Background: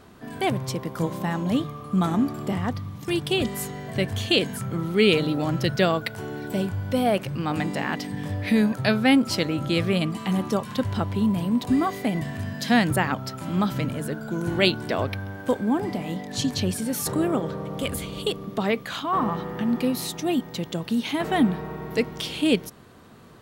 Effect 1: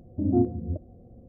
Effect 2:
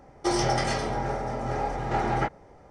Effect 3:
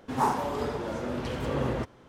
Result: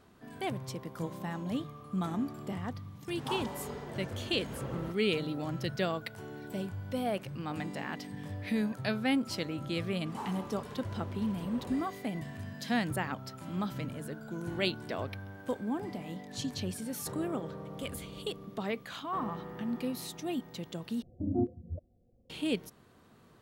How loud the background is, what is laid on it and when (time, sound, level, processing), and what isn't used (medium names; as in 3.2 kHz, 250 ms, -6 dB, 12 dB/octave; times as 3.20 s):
background -11 dB
3.08 s: add 3 -12 dB
9.97 s: add 3 -16 dB
21.02 s: replace with 1 -7 dB + reverb removal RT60 1.7 s
not used: 2